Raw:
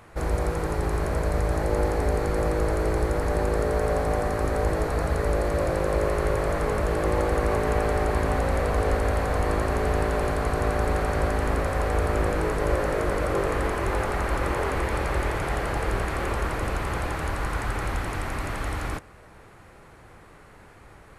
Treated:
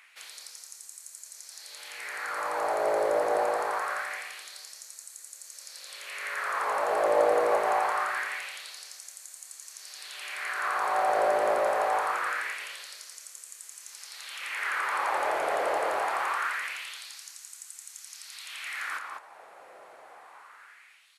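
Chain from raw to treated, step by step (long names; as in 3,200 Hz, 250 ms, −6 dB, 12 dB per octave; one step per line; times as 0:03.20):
slap from a distant wall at 34 metres, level −6 dB
auto-filter high-pass sine 0.24 Hz 590–7,200 Hz
level −2.5 dB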